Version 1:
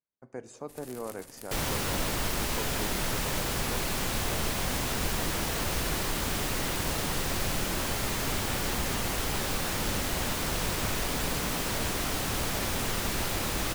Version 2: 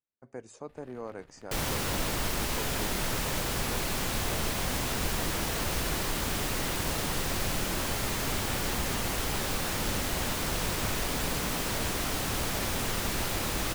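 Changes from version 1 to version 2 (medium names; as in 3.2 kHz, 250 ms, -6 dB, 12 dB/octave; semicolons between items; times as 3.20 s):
first sound: add distance through air 400 m; reverb: off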